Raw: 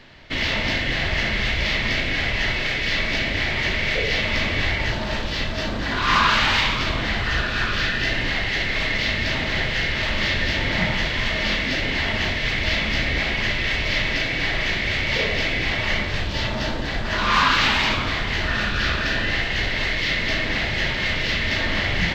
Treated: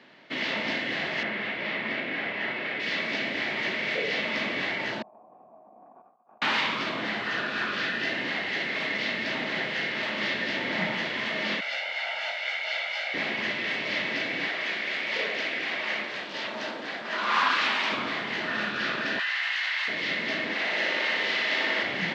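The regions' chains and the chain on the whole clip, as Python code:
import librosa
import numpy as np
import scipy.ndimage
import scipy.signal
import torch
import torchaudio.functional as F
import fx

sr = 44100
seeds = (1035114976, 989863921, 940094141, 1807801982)

y = fx.chain(x, sr, fx.lowpass(hz=2700.0, slope=12),
    fx.low_shelf(hz=65.0, db=-10.5), at=(1.23, 2.8))
y = fx.chain(y, sr, fx.median_filter(points=41),
    fx.formant_cascade(vowel='a'),
    fx.over_compress(threshold_db=-49.0, ratio=-0.5), at=(5.02, 6.42))
y = fx.chain(y, sr, fx.highpass(hz=580.0, slope=24),
    fx.comb(ms=1.4, depth=0.91),
    fx.detune_double(cents=47), at=(11.6, 13.14))
y = fx.chain(y, sr, fx.highpass(hz=460.0, slope=6),
    fx.notch(hz=860.0, q=26.0),
    fx.doppler_dist(depth_ms=0.19), at=(14.47, 17.92))
y = fx.chain(y, sr, fx.highpass(hz=1000.0, slope=24),
    fx.env_flatten(amount_pct=100), at=(19.19, 19.88))
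y = fx.chain(y, sr, fx.highpass(hz=330.0, slope=12),
    fx.room_flutter(wall_m=10.2, rt60_s=1.3), at=(20.53, 21.83))
y = scipy.signal.sosfilt(scipy.signal.butter(4, 190.0, 'highpass', fs=sr, output='sos'), y)
y = fx.high_shelf(y, sr, hz=5100.0, db=-12.0)
y = F.gain(torch.from_numpy(y), -4.0).numpy()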